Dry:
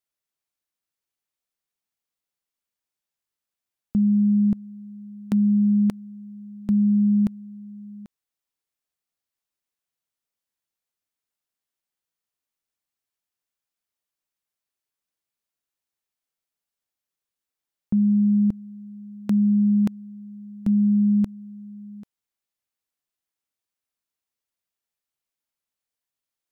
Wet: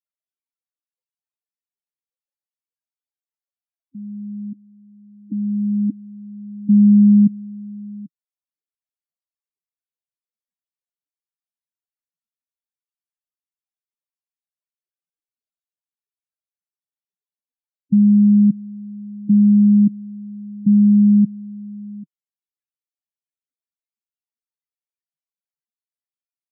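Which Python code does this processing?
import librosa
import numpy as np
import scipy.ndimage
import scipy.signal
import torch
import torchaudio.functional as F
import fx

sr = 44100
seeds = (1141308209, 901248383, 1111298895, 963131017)

y = fx.spec_topn(x, sr, count=8)
y = fx.filter_sweep_highpass(y, sr, from_hz=520.0, to_hz=170.0, start_s=3.8, end_s=7.48, q=2.6)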